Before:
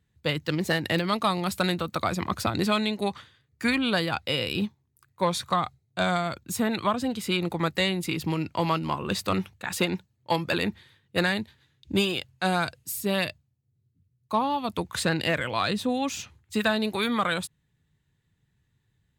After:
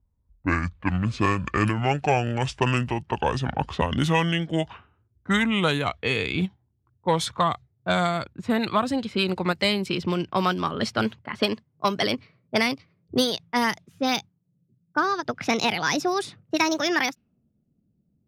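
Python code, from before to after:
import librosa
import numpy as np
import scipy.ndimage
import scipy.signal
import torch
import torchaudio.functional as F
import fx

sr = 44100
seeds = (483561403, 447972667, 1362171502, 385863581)

y = fx.speed_glide(x, sr, from_pct=54, to_pct=156)
y = fx.env_lowpass(y, sr, base_hz=460.0, full_db=-21.5)
y = fx.end_taper(y, sr, db_per_s=530.0)
y = F.gain(torch.from_numpy(y), 2.5).numpy()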